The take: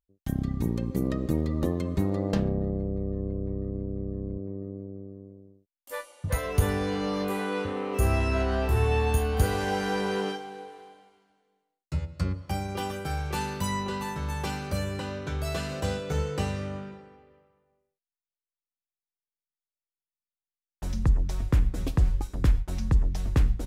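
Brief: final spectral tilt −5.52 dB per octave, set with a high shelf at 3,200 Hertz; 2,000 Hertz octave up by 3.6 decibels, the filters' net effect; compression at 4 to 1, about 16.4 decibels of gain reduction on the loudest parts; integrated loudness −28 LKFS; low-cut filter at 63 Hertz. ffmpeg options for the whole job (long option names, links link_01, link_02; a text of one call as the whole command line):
ffmpeg -i in.wav -af "highpass=63,equalizer=frequency=2000:width_type=o:gain=6,highshelf=frequency=3200:gain=-3.5,acompressor=threshold=-40dB:ratio=4,volume=14.5dB" out.wav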